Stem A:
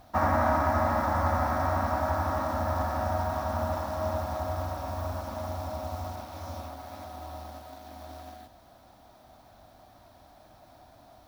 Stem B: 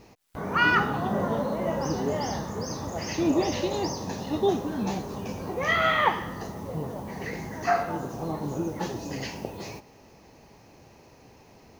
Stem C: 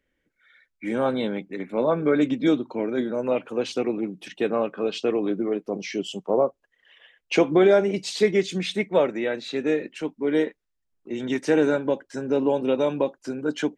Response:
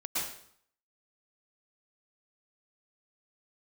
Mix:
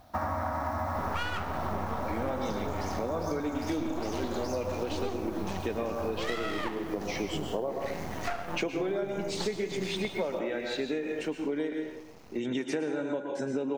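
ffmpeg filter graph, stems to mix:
-filter_complex "[0:a]volume=-3.5dB,asplit=2[a][b];[b]volume=-7dB[c];[1:a]aeval=exprs='max(val(0),0)':c=same,adelay=600,volume=3dB[d];[2:a]adelay=1250,volume=-3dB,asplit=2[e][f];[f]volume=-6.5dB[g];[3:a]atrim=start_sample=2205[h];[c][g]amix=inputs=2:normalize=0[i];[i][h]afir=irnorm=-1:irlink=0[j];[a][d][e][j]amix=inputs=4:normalize=0,acompressor=threshold=-28dB:ratio=12"

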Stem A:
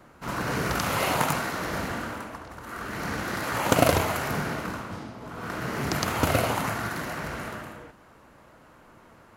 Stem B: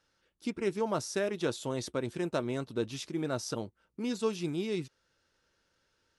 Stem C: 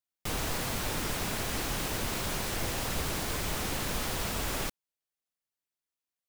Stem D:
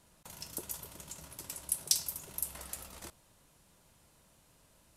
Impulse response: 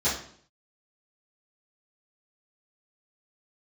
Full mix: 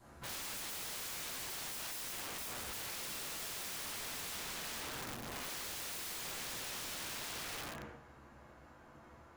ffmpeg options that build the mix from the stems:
-filter_complex "[0:a]adynamicequalizer=threshold=0.00562:dfrequency=2600:dqfactor=1.2:tfrequency=2600:tqfactor=1.2:attack=5:release=100:ratio=0.375:range=2.5:mode=boostabove:tftype=bell,acompressor=threshold=-27dB:ratio=6,volume=-11.5dB,asplit=2[a][b];[b]volume=-7.5dB[c];[1:a]adelay=1300,volume=-15.5dB[d];[2:a]adelay=1500,volume=-4dB,afade=t=in:st=2.26:d=0.73:silence=0.354813,afade=t=out:st=3.8:d=0.7:silence=0.375837,afade=t=in:st=5.32:d=0.32:silence=0.281838,asplit=2[e][f];[f]volume=-12dB[g];[3:a]volume=-5.5dB,asplit=2[h][i];[i]volume=-9dB[j];[4:a]atrim=start_sample=2205[k];[c][g][j]amix=inputs=3:normalize=0[l];[l][k]afir=irnorm=-1:irlink=0[m];[a][d][e][h][m]amix=inputs=5:normalize=0,bandreject=f=410:w=12,aeval=exprs='(mod(84.1*val(0)+1,2)-1)/84.1':c=same"

